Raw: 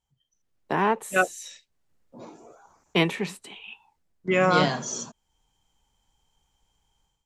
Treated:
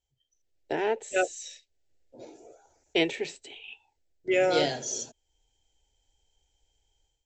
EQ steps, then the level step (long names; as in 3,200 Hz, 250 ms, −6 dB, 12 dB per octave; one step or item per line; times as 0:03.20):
linear-phase brick-wall low-pass 8,100 Hz
phaser with its sweep stopped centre 460 Hz, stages 4
0.0 dB